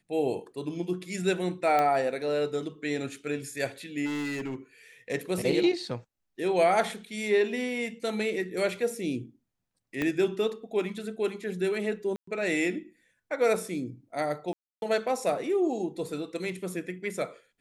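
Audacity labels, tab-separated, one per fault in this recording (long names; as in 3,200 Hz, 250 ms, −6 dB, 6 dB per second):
1.790000	1.790000	click −14 dBFS
4.050000	4.560000	clipping −29.5 dBFS
10.020000	10.020000	click −16 dBFS
12.160000	12.270000	drop-out 114 ms
14.530000	14.820000	drop-out 291 ms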